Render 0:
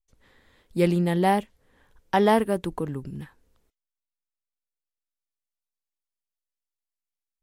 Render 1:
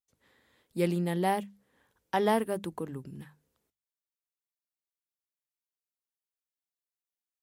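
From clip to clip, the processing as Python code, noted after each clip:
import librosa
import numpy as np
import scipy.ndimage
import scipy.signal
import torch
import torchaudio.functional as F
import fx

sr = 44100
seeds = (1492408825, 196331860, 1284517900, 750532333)

y = scipy.signal.sosfilt(scipy.signal.butter(2, 100.0, 'highpass', fs=sr, output='sos'), x)
y = fx.high_shelf(y, sr, hz=8700.0, db=6.5)
y = fx.hum_notches(y, sr, base_hz=50, count=4)
y = y * 10.0 ** (-6.5 / 20.0)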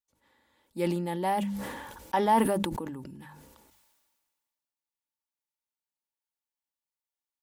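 y = fx.peak_eq(x, sr, hz=910.0, db=10.0, octaves=0.28)
y = y + 0.37 * np.pad(y, (int(3.5 * sr / 1000.0), 0))[:len(y)]
y = fx.sustainer(y, sr, db_per_s=33.0)
y = y * 10.0 ** (-3.0 / 20.0)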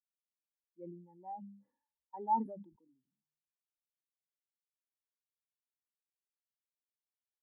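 y = fx.spectral_expand(x, sr, expansion=2.5)
y = y * 10.0 ** (-8.5 / 20.0)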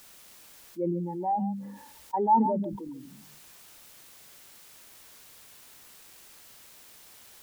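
y = x + 10.0 ** (-16.5 / 20.0) * np.pad(x, (int(137 * sr / 1000.0), 0))[:len(x)]
y = fx.env_flatten(y, sr, amount_pct=50)
y = y * 10.0 ** (8.5 / 20.0)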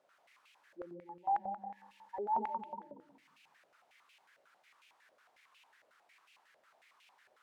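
y = fx.echo_feedback(x, sr, ms=186, feedback_pct=21, wet_db=-4.5)
y = fx.quant_companded(y, sr, bits=8)
y = fx.filter_held_bandpass(y, sr, hz=11.0, low_hz=590.0, high_hz=2600.0)
y = y * 10.0 ** (-1.0 / 20.0)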